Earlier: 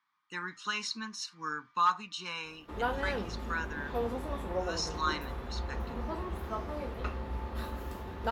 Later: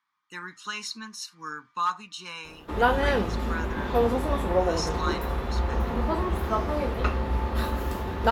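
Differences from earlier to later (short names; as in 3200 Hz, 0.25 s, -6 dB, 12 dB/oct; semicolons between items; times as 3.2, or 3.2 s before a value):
speech: remove LPF 6300 Hz 12 dB/oct; background +10.5 dB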